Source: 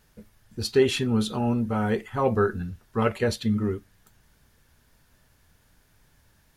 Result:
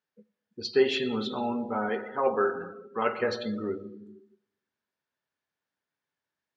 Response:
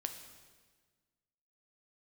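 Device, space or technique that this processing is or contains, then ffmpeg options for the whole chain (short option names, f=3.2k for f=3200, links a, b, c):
supermarket ceiling speaker: -filter_complex "[0:a]highpass=260,lowpass=5.5k[a];[1:a]atrim=start_sample=2205[b];[a][b]afir=irnorm=-1:irlink=0,asettb=1/sr,asplit=3[c][d][e];[c]atrim=end=1.894[f];[d]atrim=start=1.89:end=3.19,asetpts=PTS-STARTPTS,afade=t=in:d=0.004:c=qsin,afade=t=out:st=1.296:d=0.004:c=qsin,highpass=f=240:p=1[g];[e]atrim=start=3.186[h];[f][g]acrossfade=d=0.004:c1=hsin:c2=qsin[i];[i][h]acrossfade=d=0.004:c1=qsin:c2=hsin,afftdn=nr=22:nf=-41,equalizer=f=1.5k:w=0.35:g=3,volume=-2dB"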